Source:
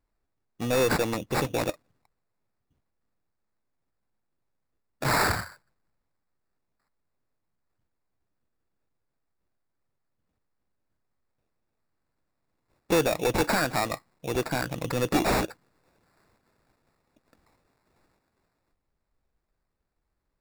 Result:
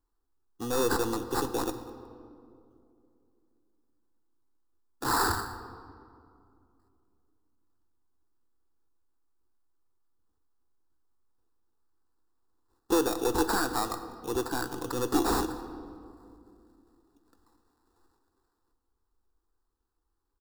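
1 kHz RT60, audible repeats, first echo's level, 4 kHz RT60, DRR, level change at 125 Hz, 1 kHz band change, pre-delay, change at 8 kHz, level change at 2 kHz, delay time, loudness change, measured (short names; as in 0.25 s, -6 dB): 2.3 s, 1, -21.5 dB, 1.3 s, 9.5 dB, -8.5 dB, -1.0 dB, 6 ms, -0.5 dB, -6.0 dB, 0.198 s, -3.0 dB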